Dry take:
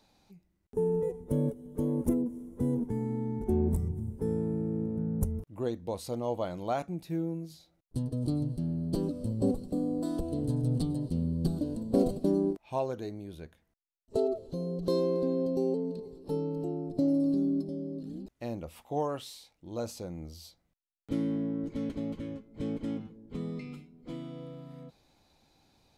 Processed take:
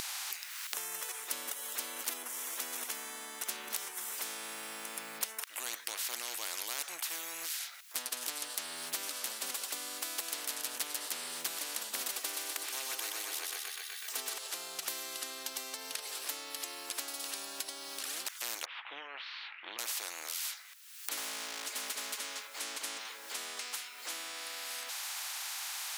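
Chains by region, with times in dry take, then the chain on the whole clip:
0:12.16–0:14.38: comb filter 2.6 ms, depth 99% + repeating echo 124 ms, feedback 45%, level −6.5 dB
0:18.65–0:19.79: elliptic low-pass filter 2,500 Hz, stop band 70 dB + parametric band 630 Hz −11.5 dB 2 octaves
0:21.17–0:22.47: gain into a clipping stage and back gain 30 dB + comb filter 4.8 ms, depth 91%
whole clip: high-pass filter 1,400 Hz 24 dB per octave; upward compression, threshold −58 dBFS; every bin compressed towards the loudest bin 10 to 1; level +14 dB

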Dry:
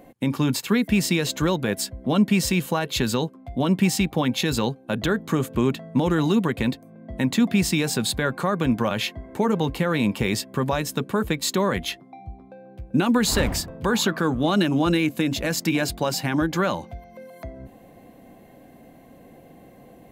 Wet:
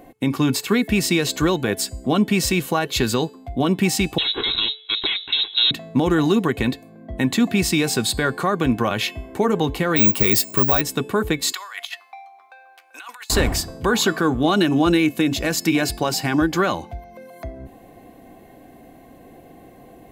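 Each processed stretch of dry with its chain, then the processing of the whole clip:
0:04.18–0:05.71: lower of the sound and its delayed copy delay 1.7 ms + voice inversion scrambler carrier 3,900 Hz
0:09.96–0:10.81: high-shelf EQ 5,300 Hz +7 dB + hard clipping −15 dBFS + bad sample-rate conversion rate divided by 2×, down none, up zero stuff
0:11.52–0:13.30: high-pass filter 1,000 Hz 24 dB per octave + compressor whose output falls as the input rises −36 dBFS, ratio −0.5
whole clip: comb filter 2.7 ms, depth 33%; hum removal 434.4 Hz, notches 31; level +3 dB

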